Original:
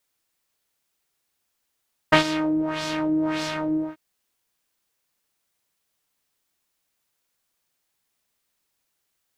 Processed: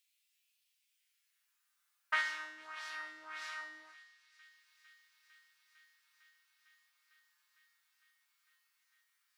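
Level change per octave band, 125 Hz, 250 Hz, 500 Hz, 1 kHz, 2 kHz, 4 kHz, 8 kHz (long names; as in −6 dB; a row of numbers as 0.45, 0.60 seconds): below −40 dB, below −40 dB, −31.5 dB, −16.0 dB, −8.5 dB, −16.5 dB, −15.5 dB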